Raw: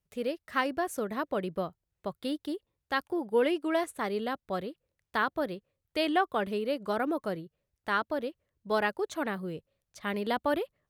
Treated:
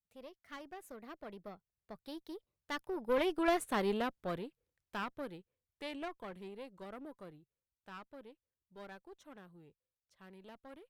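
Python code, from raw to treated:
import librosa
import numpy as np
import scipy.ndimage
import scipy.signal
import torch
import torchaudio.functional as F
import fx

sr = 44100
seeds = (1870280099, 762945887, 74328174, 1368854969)

y = fx.diode_clip(x, sr, knee_db=-31.5)
y = fx.doppler_pass(y, sr, speed_mps=26, closest_m=11.0, pass_at_s=3.69)
y = F.gain(torch.from_numpy(y), 1.5).numpy()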